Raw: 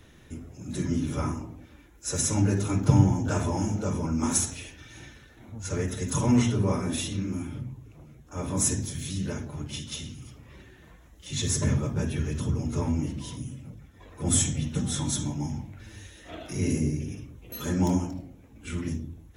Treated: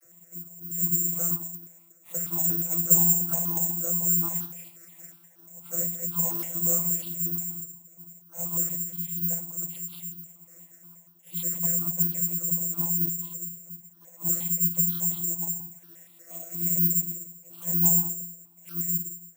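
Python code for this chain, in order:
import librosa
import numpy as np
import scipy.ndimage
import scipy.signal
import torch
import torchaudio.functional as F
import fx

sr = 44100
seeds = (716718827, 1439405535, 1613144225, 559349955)

y = scipy.signal.sosfilt(scipy.signal.butter(4, 5100.0, 'lowpass', fs=sr, output='sos'), x)
y = fx.low_shelf(y, sr, hz=180.0, db=-5.5)
y = fx.quant_companded(y, sr, bits=6)
y = fx.vocoder(y, sr, bands=32, carrier='saw', carrier_hz=170.0)
y = (np.kron(y[::6], np.eye(6)[0]) * 6)[:len(y)]
y = fx.phaser_held(y, sr, hz=8.4, low_hz=940.0, high_hz=2100.0)
y = y * 10.0 ** (-1.0 / 20.0)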